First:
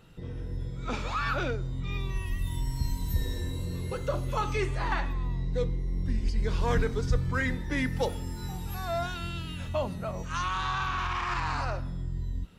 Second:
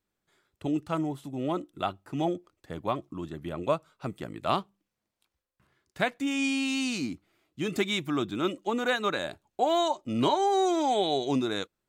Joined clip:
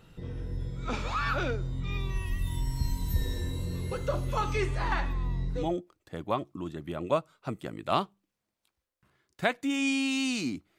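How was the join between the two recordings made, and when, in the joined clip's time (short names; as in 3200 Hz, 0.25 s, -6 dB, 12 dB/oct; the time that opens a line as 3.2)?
first
5.61 switch to second from 2.18 s, crossfade 0.32 s linear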